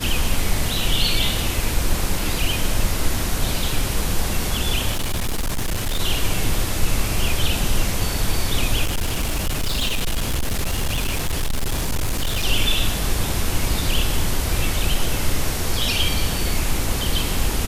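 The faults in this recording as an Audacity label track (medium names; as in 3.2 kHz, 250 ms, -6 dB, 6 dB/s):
4.920000	6.000000	clipped -18.5 dBFS
8.840000	12.450000	clipped -17.5 dBFS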